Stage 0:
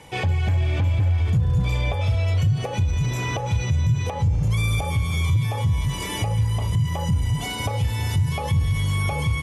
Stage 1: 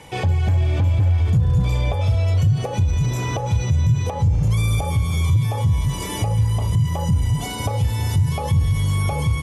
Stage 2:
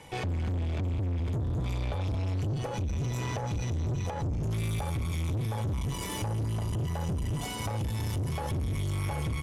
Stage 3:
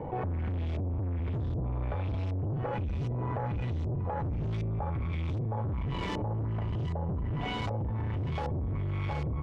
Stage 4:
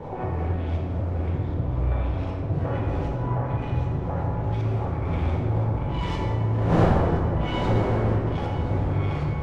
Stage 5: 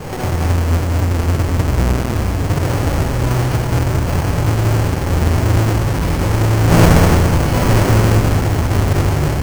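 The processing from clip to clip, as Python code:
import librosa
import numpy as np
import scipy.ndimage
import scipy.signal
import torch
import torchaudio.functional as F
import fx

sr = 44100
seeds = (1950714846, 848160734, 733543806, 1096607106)

y1 = fx.dynamic_eq(x, sr, hz=2300.0, q=0.91, threshold_db=-43.0, ratio=4.0, max_db=-6)
y1 = F.gain(torch.from_numpy(y1), 3.0).numpy()
y2 = fx.tube_stage(y1, sr, drive_db=24.0, bias=0.6)
y2 = F.gain(torch.from_numpy(y2), -4.0).numpy()
y3 = scipy.signal.medfilt(y2, 9)
y3 = fx.filter_lfo_lowpass(y3, sr, shape='saw_up', hz=1.3, low_hz=570.0, high_hz=5600.0, q=1.2)
y3 = fx.env_flatten(y3, sr, amount_pct=70)
y3 = F.gain(torch.from_numpy(y3), -2.5).numpy()
y4 = fx.dmg_wind(y3, sr, seeds[0], corner_hz=470.0, level_db=-36.0)
y4 = y4 + 10.0 ** (-13.5 / 20.0) * np.pad(y4, (int(1021 * sr / 1000.0), 0))[:len(y4)]
y4 = fx.rev_plate(y4, sr, seeds[1], rt60_s=2.5, hf_ratio=0.45, predelay_ms=0, drr_db=-3.5)
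y5 = fx.halfwave_hold(y4, sr)
y5 = y5 + 10.0 ** (-6.0 / 20.0) * np.pad(y5, (int(202 * sr / 1000.0), 0))[:len(y5)]
y5 = np.repeat(scipy.signal.resample_poly(y5, 1, 6), 6)[:len(y5)]
y5 = F.gain(torch.from_numpy(y5), 4.5).numpy()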